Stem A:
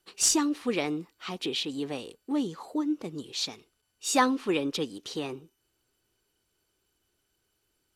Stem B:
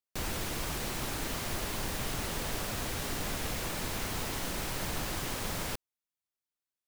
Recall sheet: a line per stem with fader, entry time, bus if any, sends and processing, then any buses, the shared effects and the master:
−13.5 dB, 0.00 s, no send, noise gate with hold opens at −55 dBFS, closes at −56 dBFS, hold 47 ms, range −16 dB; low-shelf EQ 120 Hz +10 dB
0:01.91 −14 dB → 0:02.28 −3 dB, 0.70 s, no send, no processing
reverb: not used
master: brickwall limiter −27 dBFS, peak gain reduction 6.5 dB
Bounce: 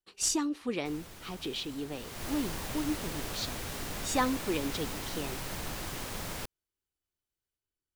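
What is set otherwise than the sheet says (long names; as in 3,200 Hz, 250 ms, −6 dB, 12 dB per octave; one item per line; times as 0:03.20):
stem A −13.5 dB → −6.0 dB
master: missing brickwall limiter −27 dBFS, peak gain reduction 6.5 dB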